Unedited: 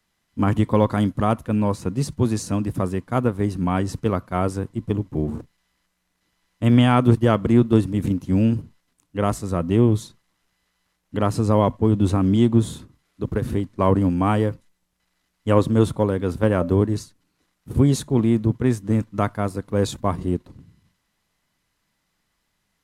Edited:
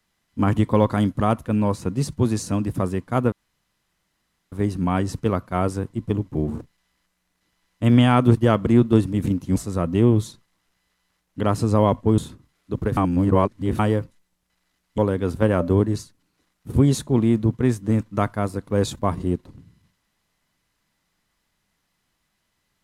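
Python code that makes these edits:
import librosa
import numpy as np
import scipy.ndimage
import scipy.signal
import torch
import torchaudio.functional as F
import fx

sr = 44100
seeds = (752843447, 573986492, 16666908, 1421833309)

y = fx.edit(x, sr, fx.insert_room_tone(at_s=3.32, length_s=1.2),
    fx.cut(start_s=8.36, length_s=0.96),
    fx.cut(start_s=11.94, length_s=0.74),
    fx.reverse_span(start_s=13.47, length_s=0.82),
    fx.cut(start_s=15.48, length_s=0.51), tone=tone)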